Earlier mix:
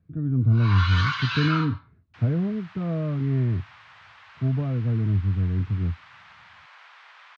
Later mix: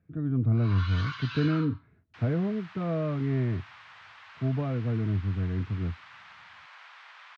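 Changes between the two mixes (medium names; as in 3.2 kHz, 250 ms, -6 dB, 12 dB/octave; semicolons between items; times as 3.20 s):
speech +4.0 dB; first sound -10.5 dB; master: add bass shelf 260 Hz -11.5 dB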